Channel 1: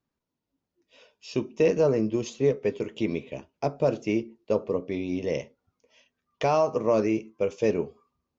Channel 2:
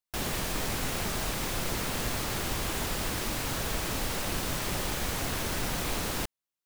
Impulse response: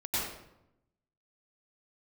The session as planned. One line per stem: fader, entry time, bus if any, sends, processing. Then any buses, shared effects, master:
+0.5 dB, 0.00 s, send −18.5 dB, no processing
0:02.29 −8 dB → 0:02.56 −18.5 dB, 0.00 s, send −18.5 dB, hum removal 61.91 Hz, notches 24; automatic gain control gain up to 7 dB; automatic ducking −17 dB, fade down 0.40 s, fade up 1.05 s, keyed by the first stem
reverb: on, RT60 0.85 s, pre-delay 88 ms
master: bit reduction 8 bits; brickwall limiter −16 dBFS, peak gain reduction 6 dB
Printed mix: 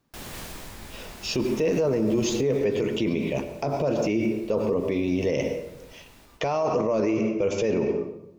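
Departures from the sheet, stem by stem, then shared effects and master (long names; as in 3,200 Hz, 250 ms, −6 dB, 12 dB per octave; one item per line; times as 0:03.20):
stem 1 +0.5 dB → +11.5 dB
master: missing bit reduction 8 bits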